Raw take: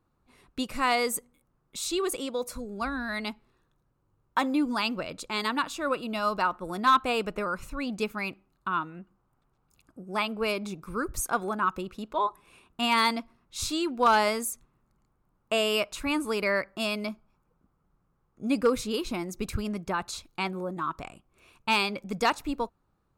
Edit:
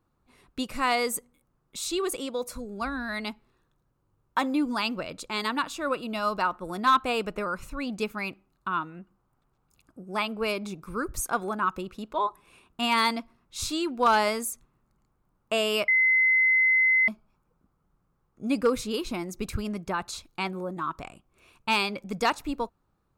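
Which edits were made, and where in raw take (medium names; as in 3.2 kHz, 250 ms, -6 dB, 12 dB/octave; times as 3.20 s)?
15.88–17.08 s: bleep 2.05 kHz -18 dBFS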